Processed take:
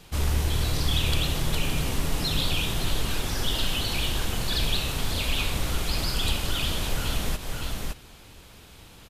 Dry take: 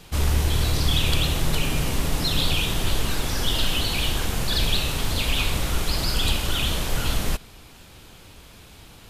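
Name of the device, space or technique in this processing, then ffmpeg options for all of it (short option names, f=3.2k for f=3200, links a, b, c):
ducked delay: -filter_complex "[0:a]asplit=3[a][b][c];[b]adelay=564,volume=-4dB[d];[c]apad=whole_len=425809[e];[d][e]sidechaincompress=threshold=-26dB:ratio=8:attack=16:release=204[f];[a][f]amix=inputs=2:normalize=0,volume=-3.5dB"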